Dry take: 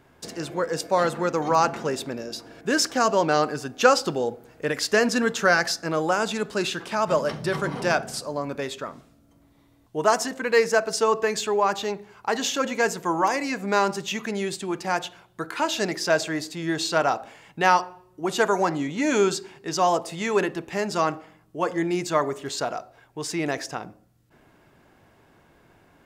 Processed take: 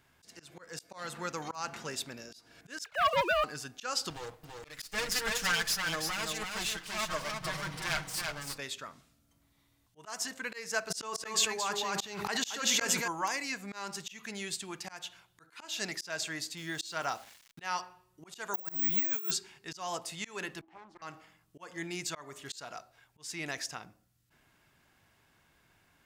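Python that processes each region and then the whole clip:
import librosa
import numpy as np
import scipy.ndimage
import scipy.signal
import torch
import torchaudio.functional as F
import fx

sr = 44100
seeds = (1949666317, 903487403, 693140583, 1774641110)

y = fx.chain(x, sr, fx.sine_speech(),
    fx.leveller(passes=2), at=(2.84, 3.44))
y = fx.chain(y, sr, fx.lower_of_two(delay_ms=6.4),
    fx.echo_single(ms=332, db=-4.5), at=(4.1, 8.58))
y = fx.chain(y, sr, fx.echo_single(ms=227, db=-3.0),
    fx.auto_swell(attack_ms=781.0),
    fx.env_flatten(amount_pct=100), at=(10.9, 13.08))
y = fx.chain(y, sr, fx.notch(hz=2600.0, q=20.0),
    fx.sample_gate(floor_db=-44.0), at=(16.57, 17.61))
y = fx.chain(y, sr, fx.over_compress(threshold_db=-26.0, ratio=-0.5),
    fx.high_shelf(hz=3000.0, db=-5.0),
    fx.resample_bad(factor=2, down='filtered', up='zero_stuff'), at=(18.54, 19.31))
y = fx.chain(y, sr, fx.double_bandpass(hz=500.0, octaves=1.3),
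    fx.doppler_dist(depth_ms=0.91), at=(20.61, 21.02))
y = fx.tone_stack(y, sr, knobs='5-5-5')
y = fx.auto_swell(y, sr, attack_ms=244.0)
y = F.gain(torch.from_numpy(y), 4.0).numpy()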